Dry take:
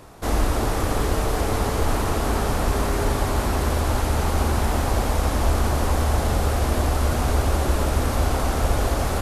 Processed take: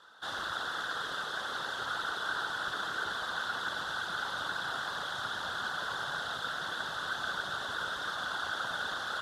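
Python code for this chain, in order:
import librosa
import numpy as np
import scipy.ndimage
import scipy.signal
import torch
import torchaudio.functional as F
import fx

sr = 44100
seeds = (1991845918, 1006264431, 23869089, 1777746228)

y = fx.whisperise(x, sr, seeds[0])
y = fx.double_bandpass(y, sr, hz=2300.0, octaves=1.2)
y = F.gain(torch.from_numpy(y), 3.5).numpy()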